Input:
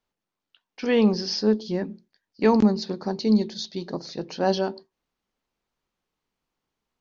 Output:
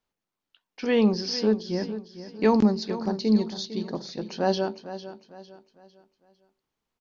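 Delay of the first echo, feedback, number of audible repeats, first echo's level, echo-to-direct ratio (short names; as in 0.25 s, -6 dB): 0.453 s, 37%, 3, -13.0 dB, -12.5 dB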